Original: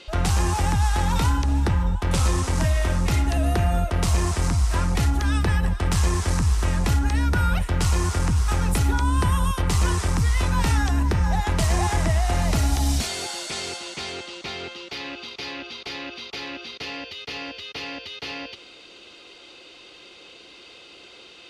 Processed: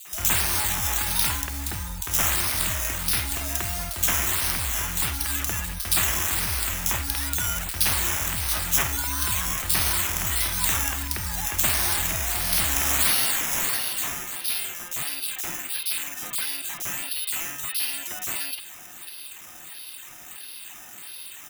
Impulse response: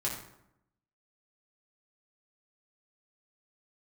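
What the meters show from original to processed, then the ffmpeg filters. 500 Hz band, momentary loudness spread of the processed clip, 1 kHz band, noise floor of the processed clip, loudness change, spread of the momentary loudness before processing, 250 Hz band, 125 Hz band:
−8.5 dB, 16 LU, −5.0 dB, −42 dBFS, +0.5 dB, 11 LU, −11.0 dB, −12.5 dB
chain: -filter_complex "[0:a]crystalizer=i=4.5:c=0,acrusher=samples=8:mix=1:aa=0.000001:lfo=1:lforange=4.8:lforate=1.5,equalizer=frequency=470:width_type=o:width=0.39:gain=-7,acrossover=split=3300[link_01][link_02];[link_01]adelay=50[link_03];[link_03][link_02]amix=inputs=2:normalize=0,crystalizer=i=6:c=0,aeval=exprs='4.47*(cos(1*acos(clip(val(0)/4.47,-1,1)))-cos(1*PI/2))+0.282*(cos(2*acos(clip(val(0)/4.47,-1,1)))-cos(2*PI/2))':channel_layout=same,volume=-13dB"

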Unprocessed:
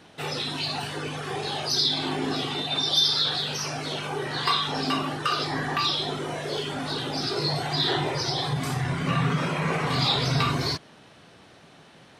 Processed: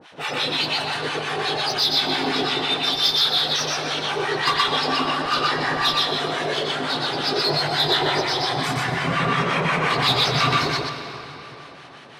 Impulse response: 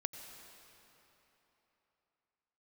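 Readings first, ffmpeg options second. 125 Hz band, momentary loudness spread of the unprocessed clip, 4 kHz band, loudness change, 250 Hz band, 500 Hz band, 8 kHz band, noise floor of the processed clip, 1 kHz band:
−1.0 dB, 8 LU, +5.0 dB, +5.0 dB, +1.5 dB, +5.5 dB, +3.0 dB, −42 dBFS, +6.5 dB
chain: -filter_complex "[0:a]asplit=2[link_01][link_02];[link_02]highpass=frequency=720:poles=1,volume=15dB,asoftclip=type=tanh:threshold=-9.5dB[link_03];[link_01][link_03]amix=inputs=2:normalize=0,lowpass=frequency=3100:poles=1,volume=-6dB,acrossover=split=860[link_04][link_05];[link_04]aeval=exprs='val(0)*(1-1/2+1/2*cos(2*PI*5.7*n/s))':channel_layout=same[link_06];[link_05]aeval=exprs='val(0)*(1-1/2-1/2*cos(2*PI*5.7*n/s))':channel_layout=same[link_07];[link_06][link_07]amix=inputs=2:normalize=0,asplit=2[link_08][link_09];[1:a]atrim=start_sample=2205,highshelf=frequency=8800:gain=-5,adelay=122[link_10];[link_09][link_10]afir=irnorm=-1:irlink=0,volume=1.5dB[link_11];[link_08][link_11]amix=inputs=2:normalize=0,volume=2.5dB"

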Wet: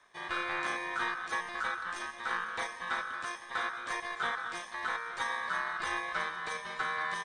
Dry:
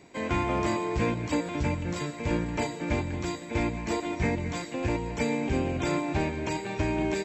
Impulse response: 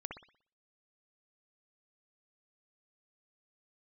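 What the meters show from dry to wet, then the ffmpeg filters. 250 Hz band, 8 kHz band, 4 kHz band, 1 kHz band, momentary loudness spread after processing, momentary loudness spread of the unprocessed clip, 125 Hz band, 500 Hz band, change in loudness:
−22.0 dB, −6.5 dB, −1.0 dB, −0.5 dB, 4 LU, 4 LU, −28.0 dB, −14.5 dB, −5.0 dB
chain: -af "dynaudnorm=framelen=190:gausssize=3:maxgain=3.5dB,aeval=exprs='val(0)*sin(2*PI*1400*n/s)':channel_layout=same,volume=-7.5dB"

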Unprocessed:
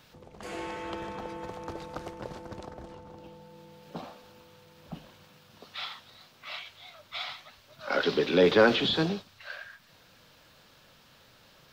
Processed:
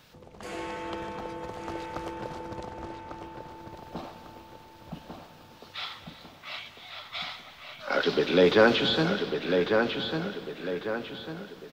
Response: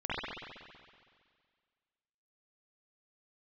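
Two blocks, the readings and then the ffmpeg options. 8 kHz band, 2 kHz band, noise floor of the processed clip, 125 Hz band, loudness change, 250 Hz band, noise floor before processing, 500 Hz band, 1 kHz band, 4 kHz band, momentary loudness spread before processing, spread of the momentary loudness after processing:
can't be measured, +2.5 dB, −52 dBFS, +2.5 dB, +1.0 dB, +2.5 dB, −59 dBFS, +2.5 dB, +3.0 dB, +2.0 dB, 24 LU, 21 LU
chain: -filter_complex "[0:a]asplit=2[link_01][link_02];[link_02]adelay=1148,lowpass=frequency=4300:poles=1,volume=-5dB,asplit=2[link_03][link_04];[link_04]adelay=1148,lowpass=frequency=4300:poles=1,volume=0.43,asplit=2[link_05][link_06];[link_06]adelay=1148,lowpass=frequency=4300:poles=1,volume=0.43,asplit=2[link_07][link_08];[link_08]adelay=1148,lowpass=frequency=4300:poles=1,volume=0.43,asplit=2[link_09][link_10];[link_10]adelay=1148,lowpass=frequency=4300:poles=1,volume=0.43[link_11];[link_01][link_03][link_05][link_07][link_09][link_11]amix=inputs=6:normalize=0,asplit=2[link_12][link_13];[1:a]atrim=start_sample=2205,adelay=143[link_14];[link_13][link_14]afir=irnorm=-1:irlink=0,volume=-21dB[link_15];[link_12][link_15]amix=inputs=2:normalize=0,volume=1dB"

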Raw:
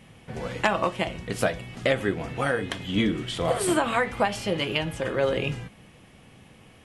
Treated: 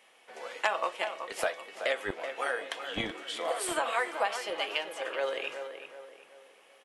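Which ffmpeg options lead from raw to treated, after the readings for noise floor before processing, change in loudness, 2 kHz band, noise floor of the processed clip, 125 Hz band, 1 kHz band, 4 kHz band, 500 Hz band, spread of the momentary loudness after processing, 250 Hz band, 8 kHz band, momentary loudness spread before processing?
−53 dBFS, −6.5 dB, −4.0 dB, −61 dBFS, −23.0 dB, −4.5 dB, −4.5 dB, −7.0 dB, 13 LU, −17.0 dB, −4.5 dB, 8 LU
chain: -filter_complex "[0:a]acrossover=split=440[link_01][link_02];[link_01]acrusher=bits=2:mix=0:aa=0.5[link_03];[link_02]asplit=2[link_04][link_05];[link_05]adelay=378,lowpass=frequency=2400:poles=1,volume=-8dB,asplit=2[link_06][link_07];[link_07]adelay=378,lowpass=frequency=2400:poles=1,volume=0.41,asplit=2[link_08][link_09];[link_09]adelay=378,lowpass=frequency=2400:poles=1,volume=0.41,asplit=2[link_10][link_11];[link_11]adelay=378,lowpass=frequency=2400:poles=1,volume=0.41,asplit=2[link_12][link_13];[link_13]adelay=378,lowpass=frequency=2400:poles=1,volume=0.41[link_14];[link_04][link_06][link_08][link_10][link_12][link_14]amix=inputs=6:normalize=0[link_15];[link_03][link_15]amix=inputs=2:normalize=0,volume=-4.5dB"

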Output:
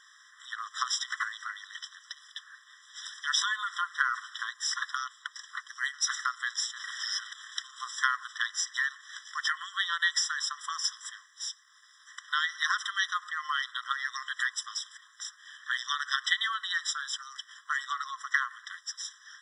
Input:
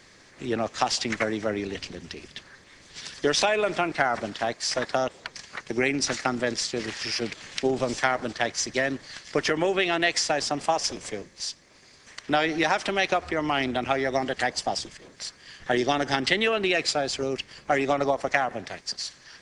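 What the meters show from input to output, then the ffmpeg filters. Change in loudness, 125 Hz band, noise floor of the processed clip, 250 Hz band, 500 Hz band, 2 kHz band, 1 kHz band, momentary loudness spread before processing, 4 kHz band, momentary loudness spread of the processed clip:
−5.5 dB, below −40 dB, −59 dBFS, below −40 dB, below −40 dB, −2.0 dB, −7.0 dB, 15 LU, −2.5 dB, 15 LU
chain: -af "afftfilt=real='re*eq(mod(floor(b*sr/1024/1000),2),1)':imag='im*eq(mod(floor(b*sr/1024/1000),2),1)':win_size=1024:overlap=0.75"

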